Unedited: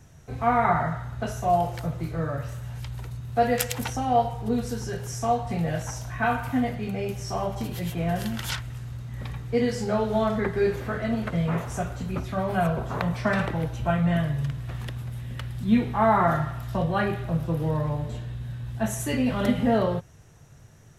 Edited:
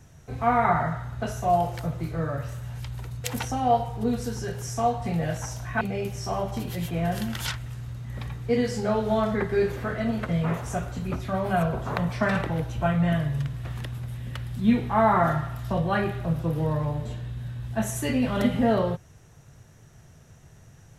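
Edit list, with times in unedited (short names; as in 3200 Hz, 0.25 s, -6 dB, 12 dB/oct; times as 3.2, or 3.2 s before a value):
3.24–3.69 cut
6.26–6.85 cut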